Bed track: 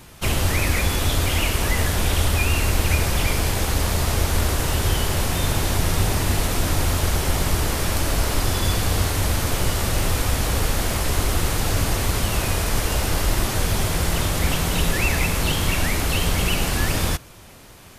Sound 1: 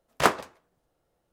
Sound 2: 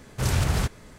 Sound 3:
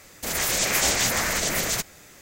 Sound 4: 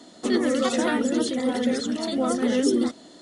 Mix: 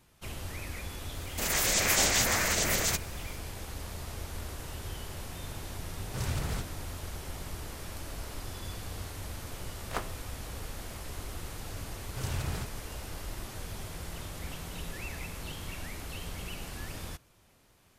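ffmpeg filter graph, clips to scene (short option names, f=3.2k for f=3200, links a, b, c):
-filter_complex "[2:a]asplit=2[a][b];[0:a]volume=-19dB[c];[3:a]atrim=end=2.21,asetpts=PTS-STARTPTS,volume=-3.5dB,afade=t=in:d=0.004:c=hsin,afade=t=out:st=2.206:d=0.004:c=hsin,adelay=1150[d];[a]atrim=end=0.98,asetpts=PTS-STARTPTS,volume=-10dB,afade=t=in:d=0.004:c=hsin,afade=t=out:st=0.976:d=0.004:c=hsin,adelay=5950[e];[1:a]atrim=end=1.32,asetpts=PTS-STARTPTS,volume=-15dB,afade=t=in:d=0.004:c=hsin,afade=t=out:st=1.316:d=0.004:c=hsin,adelay=9710[f];[b]atrim=end=0.98,asetpts=PTS-STARTPTS,volume=-11.5dB,afade=t=in:d=0.004:c=hsin,afade=t=out:st=0.976:d=0.004:c=hsin,adelay=11980[g];[c][d][e][f][g]amix=inputs=5:normalize=0"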